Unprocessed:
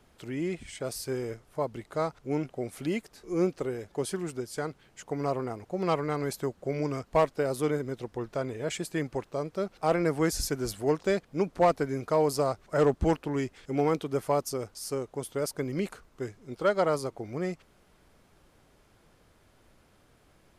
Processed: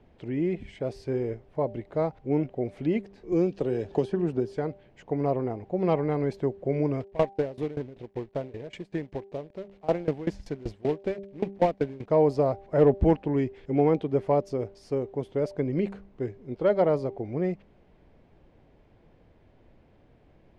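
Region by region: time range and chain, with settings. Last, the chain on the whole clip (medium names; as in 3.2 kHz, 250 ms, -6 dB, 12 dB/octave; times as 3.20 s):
3.32–4.54 s: band-stop 2.1 kHz, Q 6 + three bands compressed up and down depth 100%
7.00–12.10 s: companded quantiser 4-bit + sawtooth tremolo in dB decaying 5.2 Hz, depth 21 dB
whole clip: low-pass 1.9 kHz 12 dB/octave; peaking EQ 1.3 kHz -12.5 dB 0.78 oct; de-hum 197.4 Hz, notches 4; trim +5 dB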